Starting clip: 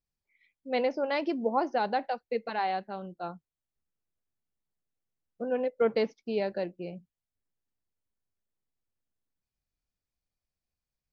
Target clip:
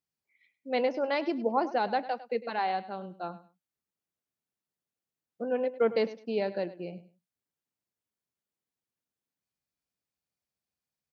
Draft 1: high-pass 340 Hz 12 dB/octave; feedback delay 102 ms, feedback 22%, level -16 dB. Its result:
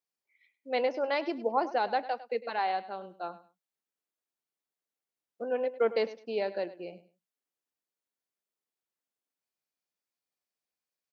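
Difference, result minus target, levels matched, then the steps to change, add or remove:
125 Hz band -8.5 dB
change: high-pass 130 Hz 12 dB/octave

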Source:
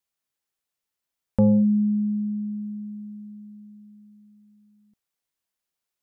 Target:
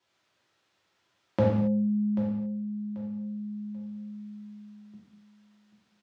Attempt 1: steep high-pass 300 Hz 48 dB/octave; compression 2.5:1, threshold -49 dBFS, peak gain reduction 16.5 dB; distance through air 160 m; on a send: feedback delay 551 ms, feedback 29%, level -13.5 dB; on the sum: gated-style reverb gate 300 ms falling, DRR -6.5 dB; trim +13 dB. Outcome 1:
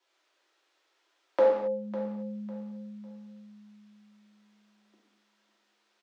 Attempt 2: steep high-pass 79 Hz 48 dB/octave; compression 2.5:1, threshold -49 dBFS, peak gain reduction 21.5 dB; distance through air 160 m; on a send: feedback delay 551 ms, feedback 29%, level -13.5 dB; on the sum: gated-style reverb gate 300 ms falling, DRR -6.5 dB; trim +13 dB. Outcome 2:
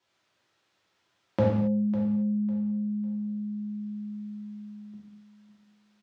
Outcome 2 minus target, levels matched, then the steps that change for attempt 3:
echo 236 ms early
change: feedback delay 787 ms, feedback 29%, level -13.5 dB

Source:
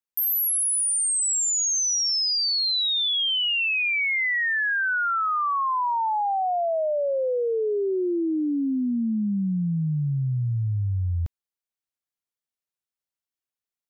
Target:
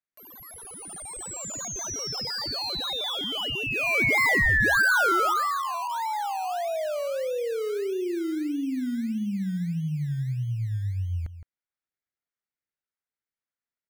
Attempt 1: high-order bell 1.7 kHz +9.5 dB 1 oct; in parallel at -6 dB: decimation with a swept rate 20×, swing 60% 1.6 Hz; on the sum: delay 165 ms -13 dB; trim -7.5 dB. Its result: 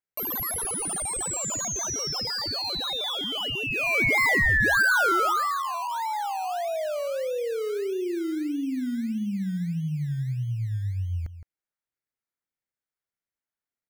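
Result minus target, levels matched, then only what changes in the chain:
8 kHz band +5.0 dB
add first: low-pass 5.9 kHz 12 dB/octave

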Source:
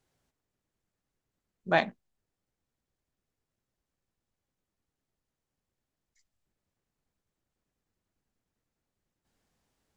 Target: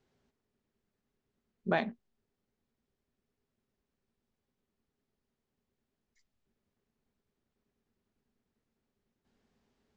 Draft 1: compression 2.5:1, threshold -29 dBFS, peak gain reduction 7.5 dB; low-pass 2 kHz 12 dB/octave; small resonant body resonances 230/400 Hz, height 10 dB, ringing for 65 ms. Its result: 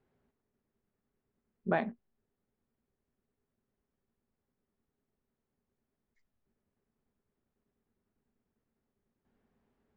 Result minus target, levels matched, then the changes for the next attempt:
4 kHz band -9.0 dB
change: low-pass 5.1 kHz 12 dB/octave

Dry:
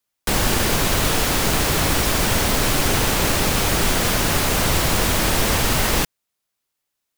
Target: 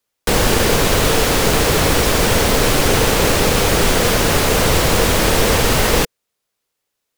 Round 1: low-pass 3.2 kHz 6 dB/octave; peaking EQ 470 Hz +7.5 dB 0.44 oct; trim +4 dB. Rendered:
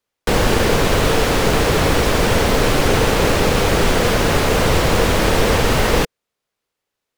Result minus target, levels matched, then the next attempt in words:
8 kHz band -4.5 dB
low-pass 11 kHz 6 dB/octave; peaking EQ 470 Hz +7.5 dB 0.44 oct; trim +4 dB

